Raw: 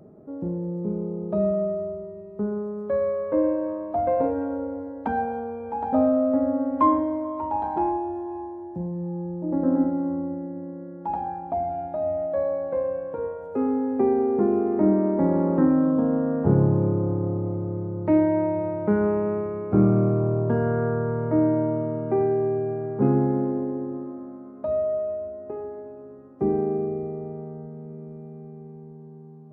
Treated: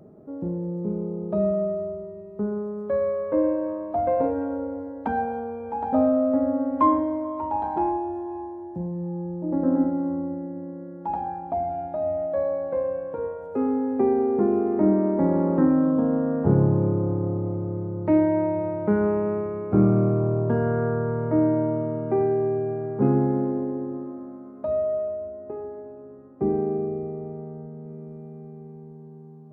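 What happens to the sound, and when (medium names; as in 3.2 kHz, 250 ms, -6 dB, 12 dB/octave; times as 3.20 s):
25.08–27.86 s: distance through air 270 m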